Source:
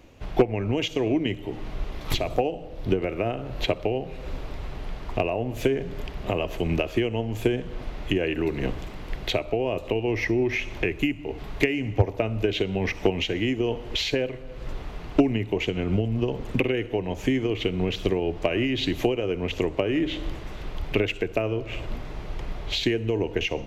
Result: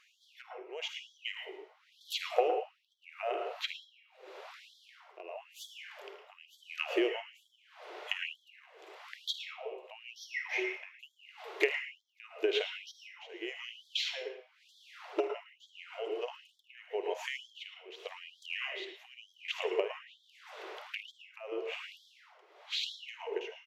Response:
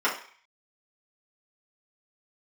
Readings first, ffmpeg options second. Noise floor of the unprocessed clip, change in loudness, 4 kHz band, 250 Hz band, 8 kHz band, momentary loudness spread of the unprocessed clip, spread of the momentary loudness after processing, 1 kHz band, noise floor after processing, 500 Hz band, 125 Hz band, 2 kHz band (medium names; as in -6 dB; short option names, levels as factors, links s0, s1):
-39 dBFS, -11.0 dB, -7.0 dB, -20.5 dB, -9.0 dB, 12 LU, 21 LU, -8.0 dB, -69 dBFS, -12.0 dB, under -40 dB, -7.5 dB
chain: -filter_complex "[0:a]tremolo=f=0.87:d=0.91,highshelf=f=8600:g=-8.5,aecho=1:1:51|78:0.168|0.158,asplit=2[s0][s1];[1:a]atrim=start_sample=2205,adelay=107[s2];[s1][s2]afir=irnorm=-1:irlink=0,volume=0.126[s3];[s0][s3]amix=inputs=2:normalize=0,afftfilt=real='re*gte(b*sr/1024,310*pow(3200/310,0.5+0.5*sin(2*PI*1.1*pts/sr)))':imag='im*gte(b*sr/1024,310*pow(3200/310,0.5+0.5*sin(2*PI*1.1*pts/sr)))':win_size=1024:overlap=0.75,volume=0.708"